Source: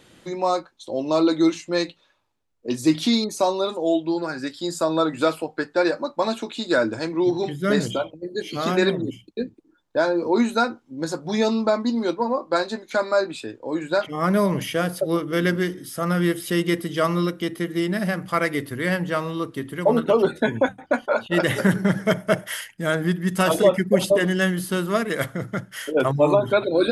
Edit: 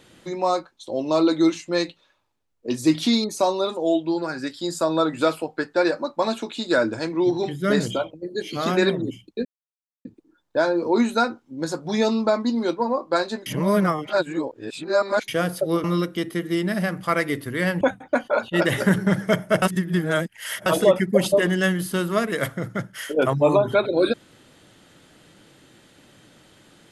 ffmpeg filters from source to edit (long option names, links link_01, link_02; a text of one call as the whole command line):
ffmpeg -i in.wav -filter_complex "[0:a]asplit=8[link_01][link_02][link_03][link_04][link_05][link_06][link_07][link_08];[link_01]atrim=end=9.45,asetpts=PTS-STARTPTS,afade=type=out:start_time=9.446:duration=0.004:curve=hsin,apad=pad_dur=0.6[link_09];[link_02]atrim=start=9.45:end=12.862,asetpts=PTS-STARTPTS,afade=type=in:duration=0.004:curve=hsin[link_10];[link_03]atrim=start=12.858:end=14.682,asetpts=PTS-STARTPTS,areverse[link_11];[link_04]atrim=start=14.678:end=15.242[link_12];[link_05]atrim=start=17.088:end=19.062[link_13];[link_06]atrim=start=20.588:end=22.402[link_14];[link_07]atrim=start=22.398:end=23.442,asetpts=PTS-STARTPTS,areverse[link_15];[link_08]atrim=start=23.438[link_16];[link_09][link_10]concat=n=2:v=0:a=1[link_17];[link_17][link_11]acrossfade=duration=0.004:curve1=hsin:curve2=hsin[link_18];[link_18][link_12]acrossfade=duration=0.004:curve1=hsin:curve2=hsin[link_19];[link_19][link_13]acrossfade=duration=0.004:curve1=hsin:curve2=hsin[link_20];[link_20][link_14]acrossfade=duration=0.004:curve1=hsin:curve2=hsin[link_21];[link_21][link_15]acrossfade=duration=0.004:curve1=hsin:curve2=hsin[link_22];[link_22][link_16]acrossfade=duration=0.004:curve1=hsin:curve2=hsin" out.wav